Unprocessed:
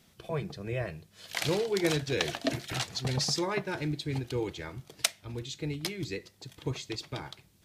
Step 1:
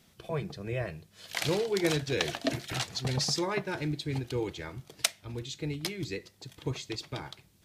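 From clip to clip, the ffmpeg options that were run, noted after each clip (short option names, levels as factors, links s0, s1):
-af anull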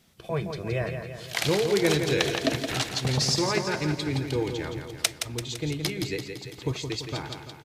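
-filter_complex "[0:a]dynaudnorm=f=160:g=3:m=1.68,asplit=2[s0][s1];[s1]aecho=0:1:169|338|507|676|845|1014|1183:0.447|0.25|0.14|0.0784|0.0439|0.0246|0.0138[s2];[s0][s2]amix=inputs=2:normalize=0"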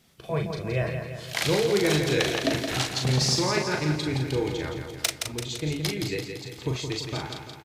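-filter_complex "[0:a]asoftclip=type=tanh:threshold=0.299,asplit=2[s0][s1];[s1]adelay=39,volume=0.596[s2];[s0][s2]amix=inputs=2:normalize=0"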